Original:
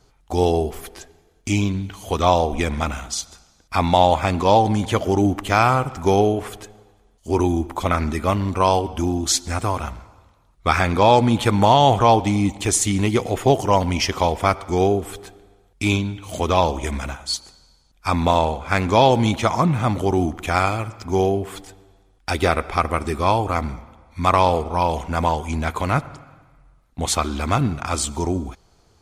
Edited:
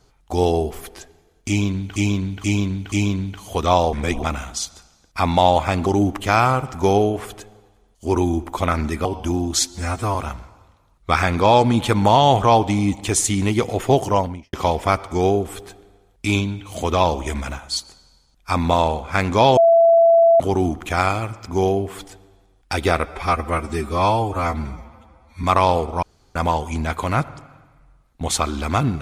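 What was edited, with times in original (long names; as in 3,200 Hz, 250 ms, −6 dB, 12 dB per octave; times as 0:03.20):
0:01.48–0:01.96: repeat, 4 plays
0:02.49–0:02.79: reverse
0:04.42–0:05.09: remove
0:08.28–0:08.78: remove
0:09.40–0:09.72: time-stretch 1.5×
0:13.63–0:14.10: fade out and dull
0:19.14–0:19.97: beep over 669 Hz −9 dBFS
0:22.62–0:24.21: time-stretch 1.5×
0:24.80–0:25.13: fill with room tone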